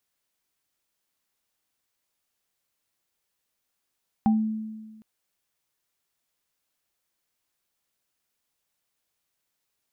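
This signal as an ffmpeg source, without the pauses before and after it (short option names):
-f lavfi -i "aevalsrc='0.158*pow(10,-3*t/1.45)*sin(2*PI*218*t)+0.0794*pow(10,-3*t/0.21)*sin(2*PI*789*t)':d=0.76:s=44100"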